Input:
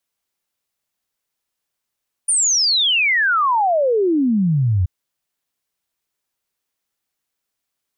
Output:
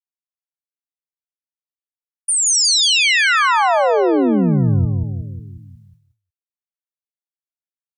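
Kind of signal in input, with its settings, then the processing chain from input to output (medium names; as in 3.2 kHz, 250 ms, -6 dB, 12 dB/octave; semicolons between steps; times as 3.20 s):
log sweep 9.6 kHz -> 85 Hz 2.58 s -13.5 dBFS
on a send: feedback delay 181 ms, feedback 55%, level -3.5 dB; on the sum: expander -42 dBFS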